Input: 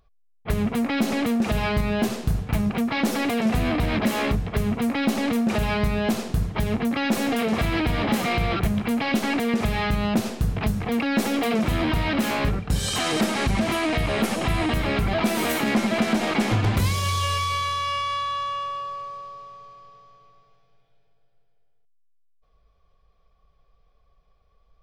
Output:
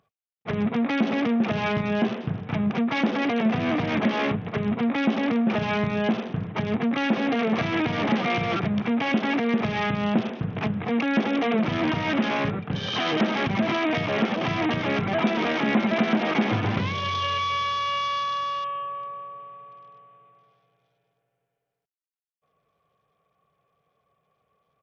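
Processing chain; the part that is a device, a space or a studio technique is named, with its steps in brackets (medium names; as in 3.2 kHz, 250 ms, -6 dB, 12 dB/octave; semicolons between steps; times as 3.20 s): Bluetooth headset (high-pass 120 Hz 24 dB/octave; resampled via 8 kHz; SBC 64 kbps 48 kHz)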